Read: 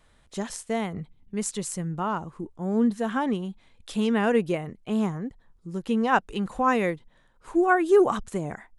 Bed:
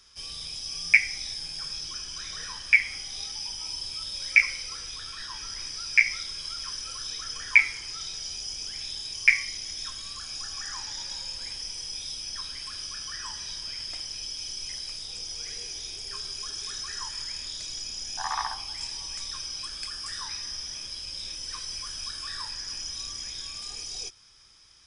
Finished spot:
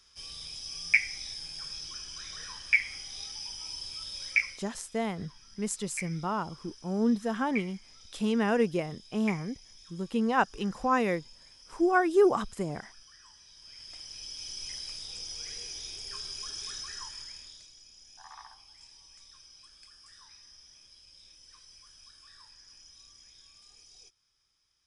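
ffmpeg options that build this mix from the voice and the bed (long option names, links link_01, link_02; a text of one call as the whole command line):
ffmpeg -i stem1.wav -i stem2.wav -filter_complex "[0:a]adelay=4250,volume=-3.5dB[link_01];[1:a]volume=10.5dB,afade=type=out:start_time=4.23:duration=0.46:silence=0.199526,afade=type=in:start_time=13.53:duration=1.12:silence=0.16788,afade=type=out:start_time=16.69:duration=1.03:silence=0.16788[link_02];[link_01][link_02]amix=inputs=2:normalize=0" out.wav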